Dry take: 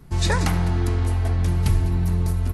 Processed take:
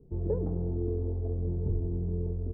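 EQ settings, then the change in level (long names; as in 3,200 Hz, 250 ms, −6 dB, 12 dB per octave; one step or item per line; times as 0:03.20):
transistor ladder low-pass 490 Hz, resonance 65%
0.0 dB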